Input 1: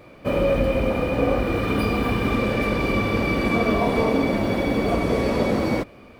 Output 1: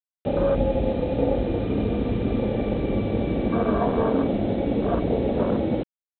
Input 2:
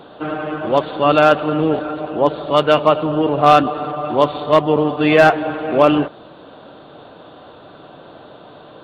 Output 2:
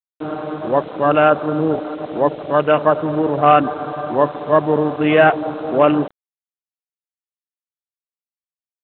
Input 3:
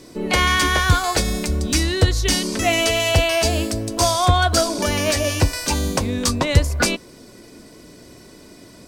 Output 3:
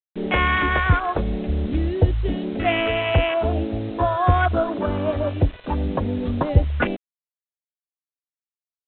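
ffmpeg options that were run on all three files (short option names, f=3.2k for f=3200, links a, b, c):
-af "afwtdn=0.0891,aresample=8000,acrusher=bits=6:mix=0:aa=0.000001,aresample=44100,volume=-1dB"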